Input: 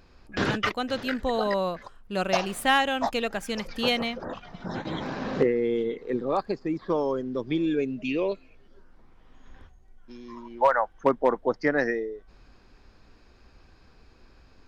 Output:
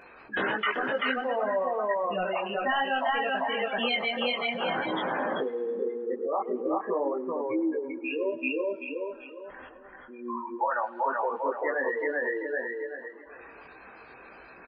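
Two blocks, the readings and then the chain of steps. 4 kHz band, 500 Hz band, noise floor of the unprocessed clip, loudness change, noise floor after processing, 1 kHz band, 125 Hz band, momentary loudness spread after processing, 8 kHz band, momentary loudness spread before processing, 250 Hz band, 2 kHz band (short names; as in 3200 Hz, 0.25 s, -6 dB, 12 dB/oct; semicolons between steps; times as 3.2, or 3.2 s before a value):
-1.5 dB, -2.0 dB, -56 dBFS, -2.5 dB, -50 dBFS, -0.5 dB, -13.0 dB, 20 LU, n/a, 13 LU, -5.0 dB, +1.0 dB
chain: tracing distortion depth 0.068 ms; HPF 110 Hz 6 dB/oct; air absorption 240 m; feedback echo 0.386 s, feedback 27%, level -3.5 dB; compressor 6:1, threshold -34 dBFS, peak gain reduction 16.5 dB; overdrive pedal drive 19 dB, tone 5000 Hz, clips at -19 dBFS; spectral gate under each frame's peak -15 dB strong; on a send: tape echo 0.107 s, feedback 80%, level -19.5 dB, low-pass 4700 Hz; on the sum: chorus voices 4, 0.54 Hz, delay 20 ms, depth 4.9 ms; EQ curve 160 Hz 0 dB, 590 Hz +5 dB, 1200 Hz +5 dB, 4000 Hz +10 dB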